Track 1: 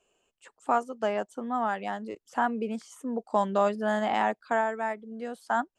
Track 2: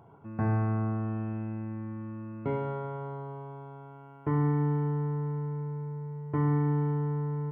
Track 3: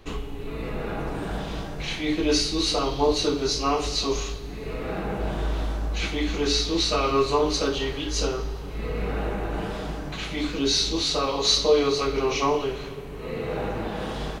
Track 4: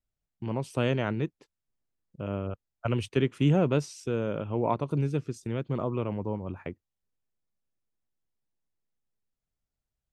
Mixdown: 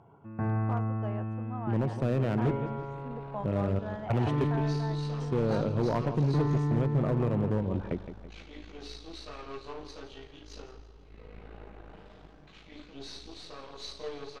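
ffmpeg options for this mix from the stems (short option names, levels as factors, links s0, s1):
-filter_complex "[0:a]lowpass=f=1600:p=1,volume=0.266[s0];[1:a]volume=0.75,asplit=2[s1][s2];[s2]volume=0.178[s3];[2:a]aeval=exprs='0.398*(cos(1*acos(clip(val(0)/0.398,-1,1)))-cos(1*PI/2))+0.0447*(cos(3*acos(clip(val(0)/0.398,-1,1)))-cos(3*PI/2))+0.0316*(cos(8*acos(clip(val(0)/0.398,-1,1)))-cos(8*PI/2))':c=same,adelay=2350,volume=0.119,asplit=2[s4][s5];[s5]volume=0.178[s6];[3:a]tiltshelf=f=1100:g=5.5,acompressor=threshold=0.0794:ratio=5,adelay=1250,volume=1,asplit=3[s7][s8][s9];[s7]atrim=end=4.45,asetpts=PTS-STARTPTS,afade=t=out:st=4.446:d=0.004:c=hsin[s10];[s8]atrim=start=4.45:end=5.2,asetpts=PTS-STARTPTS,volume=0[s11];[s9]atrim=start=5.2,asetpts=PTS-STARTPTS,afade=t=in:d=0.004:c=hsin[s12];[s10][s11][s12]concat=n=3:v=0:a=1,asplit=2[s13][s14];[s14]volume=0.266[s15];[s3][s6][s15]amix=inputs=3:normalize=0,aecho=0:1:165|330|495|660|825|990:1|0.44|0.194|0.0852|0.0375|0.0165[s16];[s0][s1][s4][s13][s16]amix=inputs=5:normalize=0,lowpass=5200,volume=11.9,asoftclip=hard,volume=0.0841"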